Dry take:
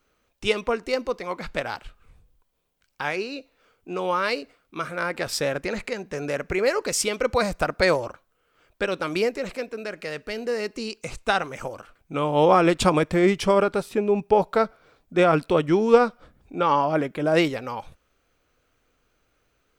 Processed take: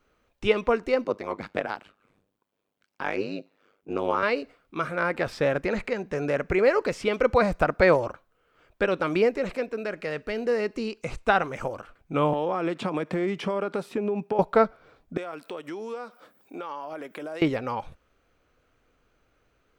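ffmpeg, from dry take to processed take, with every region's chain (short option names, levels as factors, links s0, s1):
-filter_complex "[0:a]asettb=1/sr,asplit=3[s0][s1][s2];[s0]atrim=end=1.044[s3];[s1]atrim=start=1.04:end=4.23,asetpts=PTS-STARTPTS,afade=t=in:d=0.004:c=qsin,afade=t=out:st=3.186:d=0.004:c=qsin,highpass=f=230:t=q:w=1.6,tremolo=f=100:d=0.947[s4];[s2]atrim=start=4.226[s5];[s3][s4]acrossfade=d=0.004:c1=hsin:c2=qsin[s6];[s6][s5]acrossfade=d=0.004:c1=qsin:c2=hsin,asettb=1/sr,asplit=3[s7][s8][s9];[s7]atrim=end=12.334[s10];[s8]atrim=start=12.33:end=14.39,asetpts=PTS-STARTPTS,afade=t=in:d=0.004:c=qsin,afade=t=out:st=2.056:d=0.004:c=qsin,highpass=f=160:w=0.5412,highpass=f=160:w=1.3066,acompressor=threshold=0.0562:ratio=6:attack=3.2:release=140:knee=1:detection=peak[s11];[s9]atrim=start=14.386[s12];[s10][s11]acrossfade=d=0.004:c1=hsin:c2=qsin[s13];[s13][s12]acrossfade=d=0.004:c1=qsin:c2=hsin,asettb=1/sr,asplit=3[s14][s15][s16];[s14]atrim=end=15.174[s17];[s15]atrim=start=15.17:end=17.42,asetpts=PTS-STARTPTS,afade=t=in:d=0.004:c=qsin,afade=t=out:st=2.246:d=0.004:c=qsin,highpass=220,aemphasis=mode=production:type=bsi,acompressor=threshold=0.0178:ratio=6:attack=3.2:release=140:knee=1:detection=peak[s18];[s16]atrim=start=17.416[s19];[s17][s18]acrossfade=d=0.004:c1=hsin:c2=qsin[s20];[s20][s19]acrossfade=d=0.004:c1=qsin:c2=hsin,acrossover=split=3400[s21][s22];[s22]acompressor=threshold=0.00794:ratio=4:attack=1:release=60[s23];[s21][s23]amix=inputs=2:normalize=0,highshelf=f=3900:g=-9.5,volume=1.26"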